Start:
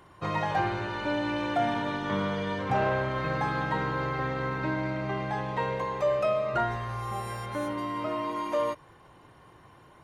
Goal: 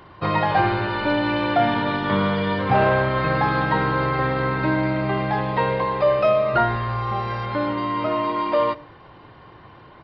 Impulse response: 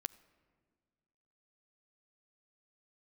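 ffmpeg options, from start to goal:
-filter_complex "[0:a]asplit=2[s0][s1];[1:a]atrim=start_sample=2205,afade=t=out:st=0.25:d=0.01,atrim=end_sample=11466[s2];[s1][s2]afir=irnorm=-1:irlink=0,volume=6.68[s3];[s0][s3]amix=inputs=2:normalize=0,aresample=11025,aresample=44100,volume=0.447"

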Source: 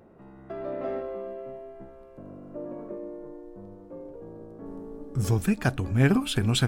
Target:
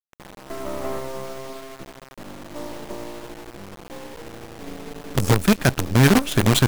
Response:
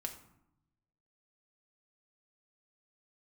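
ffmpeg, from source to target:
-filter_complex "[0:a]asplit=2[s0][s1];[s1]asoftclip=type=tanh:threshold=0.075,volume=0.447[s2];[s0][s2]amix=inputs=2:normalize=0,acrusher=bits=4:dc=4:mix=0:aa=0.000001,volume=1.58"

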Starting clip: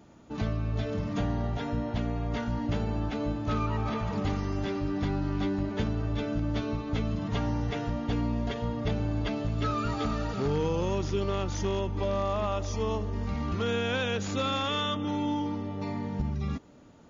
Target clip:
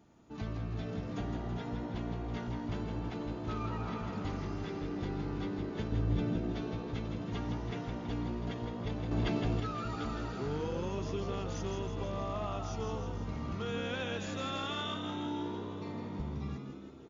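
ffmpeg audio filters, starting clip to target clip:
-filter_complex "[0:a]asettb=1/sr,asplit=3[s0][s1][s2];[s0]atrim=end=5.924[s3];[s1]atrim=start=5.92:end=6.36,asetpts=PTS-STARTPTS,afade=t=in:d=0.004:c=qsin,afade=t=out:st=0.436:d=0.004:c=qsin,lowshelf=f=390:g=8.5[s4];[s2]atrim=start=6.356[s5];[s3][s4]acrossfade=d=0.004:c1=hsin:c2=qsin[s6];[s6][s5]acrossfade=d=0.004:c1=qsin:c2=hsin,asplit=8[s7][s8][s9][s10][s11][s12][s13][s14];[s8]adelay=163,afreqshift=63,volume=0.473[s15];[s9]adelay=326,afreqshift=126,volume=0.266[s16];[s10]adelay=489,afreqshift=189,volume=0.148[s17];[s11]adelay=652,afreqshift=252,volume=0.0832[s18];[s12]adelay=815,afreqshift=315,volume=0.0468[s19];[s13]adelay=978,afreqshift=378,volume=0.026[s20];[s14]adelay=1141,afreqshift=441,volume=0.0146[s21];[s7][s15][s16][s17][s18][s19][s20][s21]amix=inputs=8:normalize=0,asettb=1/sr,asplit=3[s22][s23][s24];[s22]atrim=end=9.114[s25];[s23]atrim=start=9.11:end=9.6,asetpts=PTS-STARTPTS,afade=t=in:d=0.004:c=qsin,afade=t=out:st=0.486:d=0.004:c=qsin,acontrast=53[s26];[s24]atrim=start=9.596[s27];[s25][s26]acrossfade=d=0.004:c1=hsin:c2=qsin[s28];[s28][s27]acrossfade=d=0.004:c1=qsin:c2=hsin,bandreject=f=570:w=12,asplit=2[s29][s30];[s30]aecho=0:1:490|980|1470|1960|2450:0.1|0.06|0.036|0.0216|0.013[s31];[s29][s31]amix=inputs=2:normalize=0,volume=0.376"

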